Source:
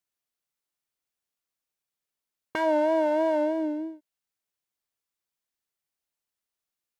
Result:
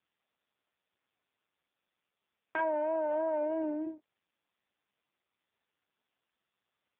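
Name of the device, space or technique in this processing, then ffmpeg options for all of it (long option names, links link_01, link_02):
voicemail: -filter_complex "[0:a]asplit=3[link_01][link_02][link_03];[link_01]afade=type=out:start_time=2.57:duration=0.02[link_04];[link_02]highpass=frequency=250:width=0.5412,highpass=frequency=250:width=1.3066,afade=type=in:start_time=2.57:duration=0.02,afade=type=out:start_time=3.85:duration=0.02[link_05];[link_03]afade=type=in:start_time=3.85:duration=0.02[link_06];[link_04][link_05][link_06]amix=inputs=3:normalize=0,highpass=340,lowpass=3000,acompressor=threshold=-29dB:ratio=12,volume=2dB" -ar 8000 -c:a libopencore_amrnb -b:a 5150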